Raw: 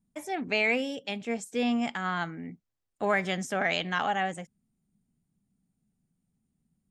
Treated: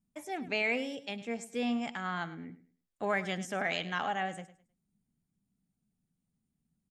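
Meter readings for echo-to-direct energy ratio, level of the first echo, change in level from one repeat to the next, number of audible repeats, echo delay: −15.0 dB, −15.5 dB, −12.0 dB, 2, 104 ms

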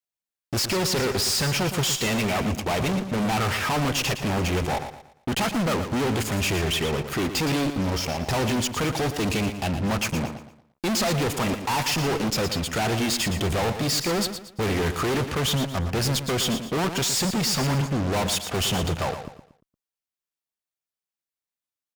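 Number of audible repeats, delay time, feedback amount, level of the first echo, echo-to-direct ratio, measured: 3, 116 ms, 34%, −9.5 dB, −9.0 dB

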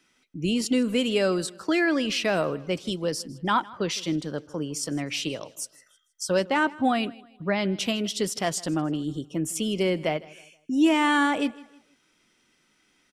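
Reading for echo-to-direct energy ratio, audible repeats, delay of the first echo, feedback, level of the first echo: −21.0 dB, 2, 158 ms, 36%, −21.5 dB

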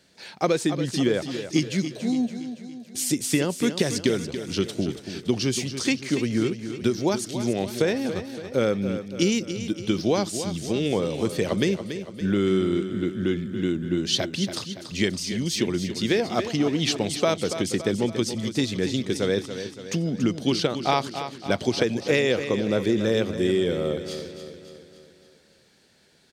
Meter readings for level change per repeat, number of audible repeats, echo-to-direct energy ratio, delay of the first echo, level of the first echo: −5.5 dB, 5, −8.5 dB, 283 ms, −10.0 dB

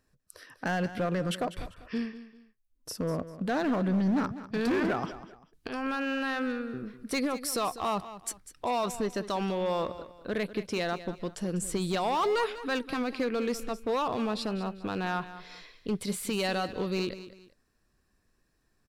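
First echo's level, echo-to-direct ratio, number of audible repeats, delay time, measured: −14.0 dB, −13.5 dB, 2, 197 ms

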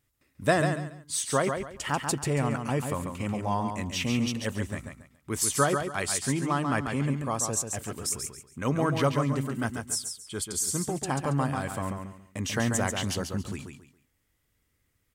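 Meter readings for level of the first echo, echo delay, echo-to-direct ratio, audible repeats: −6.0 dB, 139 ms, −5.5 dB, 3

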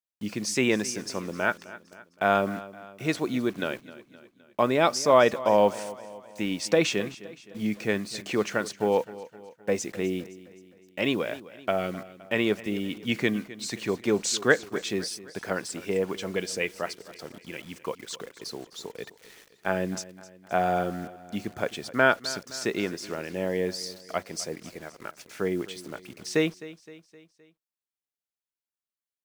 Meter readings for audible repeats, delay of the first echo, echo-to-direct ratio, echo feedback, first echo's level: 3, 259 ms, −16.0 dB, 51%, −17.5 dB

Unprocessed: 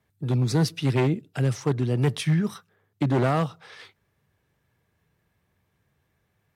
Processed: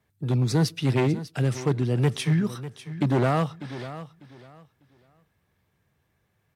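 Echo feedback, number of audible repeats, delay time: 23%, 2, 597 ms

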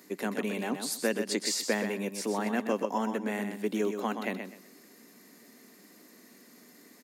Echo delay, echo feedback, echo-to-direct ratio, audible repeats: 126 ms, 23%, −7.5 dB, 3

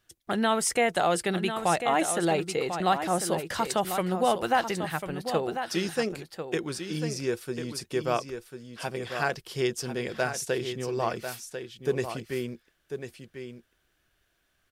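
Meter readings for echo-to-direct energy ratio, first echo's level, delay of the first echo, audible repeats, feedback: −8.5 dB, −8.5 dB, 1,045 ms, 1, repeats not evenly spaced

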